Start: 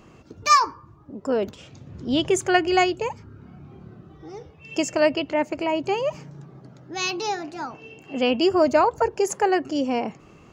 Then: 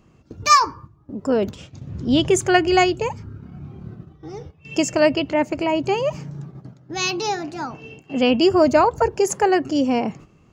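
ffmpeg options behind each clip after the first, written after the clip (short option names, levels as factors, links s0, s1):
-af "agate=range=0.282:threshold=0.00631:ratio=16:detection=peak,bass=f=250:g=7,treble=f=4000:g=2,volume=1.33"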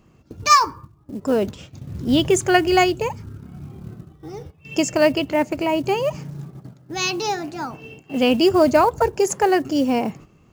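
-af "acrusher=bits=7:mode=log:mix=0:aa=0.000001"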